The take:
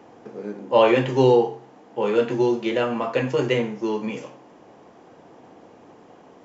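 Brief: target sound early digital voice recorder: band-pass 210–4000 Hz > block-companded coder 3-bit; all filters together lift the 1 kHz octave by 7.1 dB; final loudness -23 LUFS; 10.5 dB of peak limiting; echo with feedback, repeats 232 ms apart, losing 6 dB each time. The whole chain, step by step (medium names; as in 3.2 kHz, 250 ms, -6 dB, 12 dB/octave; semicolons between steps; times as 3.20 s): peaking EQ 1 kHz +8.5 dB; peak limiter -10.5 dBFS; band-pass 210–4000 Hz; feedback delay 232 ms, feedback 50%, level -6 dB; block-companded coder 3-bit; trim -2 dB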